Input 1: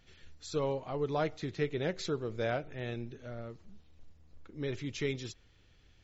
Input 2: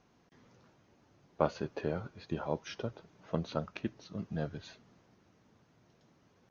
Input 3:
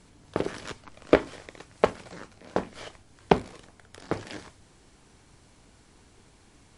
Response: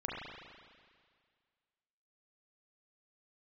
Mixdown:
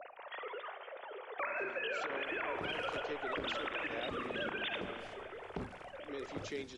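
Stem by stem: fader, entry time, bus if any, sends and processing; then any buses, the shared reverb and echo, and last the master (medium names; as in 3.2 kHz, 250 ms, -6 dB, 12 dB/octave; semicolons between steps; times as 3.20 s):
-6.0 dB, 1.50 s, bus A, no send, none
+0.5 dB, 0.00 s, bus A, send -10 dB, formants replaced by sine waves; spectrum-flattening compressor 4:1
-15.5 dB, 2.25 s, no bus, no send, bass shelf 440 Hz +8.5 dB
bus A: 0.0 dB, high-pass 250 Hz 24 dB/octave; compression, threshold -36 dBFS, peak gain reduction 9.5 dB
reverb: on, RT60 1.9 s, pre-delay 33 ms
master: peak limiter -28.5 dBFS, peak gain reduction 15 dB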